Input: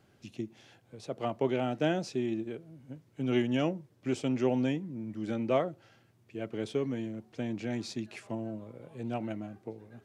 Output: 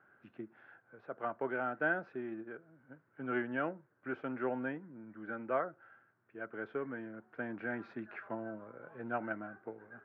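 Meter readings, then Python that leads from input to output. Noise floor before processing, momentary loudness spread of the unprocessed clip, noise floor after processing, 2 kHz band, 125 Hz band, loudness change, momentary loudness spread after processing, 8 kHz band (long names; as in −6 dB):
−65 dBFS, 16 LU, −73 dBFS, +5.0 dB, −14.5 dB, −6.0 dB, 16 LU, below −25 dB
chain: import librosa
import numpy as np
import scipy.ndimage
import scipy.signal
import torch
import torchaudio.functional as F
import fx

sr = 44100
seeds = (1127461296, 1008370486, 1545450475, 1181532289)

y = fx.highpass(x, sr, hz=440.0, slope=6)
y = fx.rider(y, sr, range_db=4, speed_s=2.0)
y = fx.ladder_lowpass(y, sr, hz=1600.0, resonance_pct=75)
y = y * 10.0 ** (7.5 / 20.0)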